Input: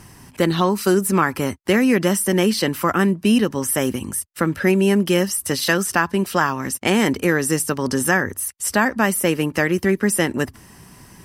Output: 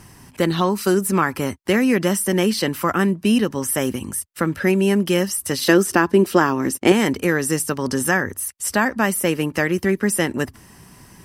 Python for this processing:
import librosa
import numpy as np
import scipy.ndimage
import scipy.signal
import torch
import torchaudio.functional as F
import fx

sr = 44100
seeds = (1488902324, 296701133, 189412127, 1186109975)

y = fx.peak_eq(x, sr, hz=340.0, db=11.0, octaves=1.1, at=(5.61, 6.92))
y = y * 10.0 ** (-1.0 / 20.0)